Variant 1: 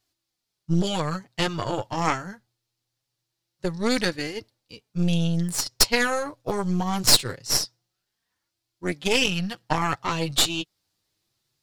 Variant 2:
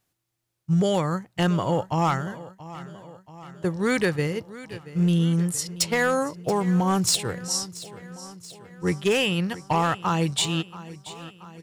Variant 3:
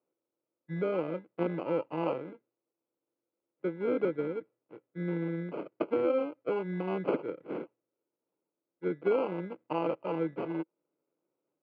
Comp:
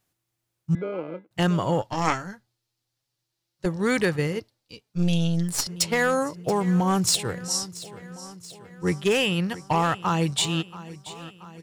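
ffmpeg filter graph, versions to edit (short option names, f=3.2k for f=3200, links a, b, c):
-filter_complex "[0:a]asplit=2[a][b];[1:a]asplit=4[c][d][e][f];[c]atrim=end=0.752[g];[2:a]atrim=start=0.748:end=1.312[h];[d]atrim=start=1.308:end=1.812[i];[a]atrim=start=1.808:end=3.662[j];[e]atrim=start=3.658:end=4.402[k];[b]atrim=start=4.398:end=5.672[l];[f]atrim=start=5.668[m];[g][h]acrossfade=d=0.004:c1=hsin:c2=hsin[n];[n][i]acrossfade=d=0.004:c1=hsin:c2=hsin[o];[o][j]acrossfade=d=0.004:c1=hsin:c2=hsin[p];[p][k]acrossfade=d=0.004:c1=hsin:c2=hsin[q];[q][l]acrossfade=d=0.004:c1=hsin:c2=hsin[r];[r][m]acrossfade=d=0.004:c1=hsin:c2=hsin"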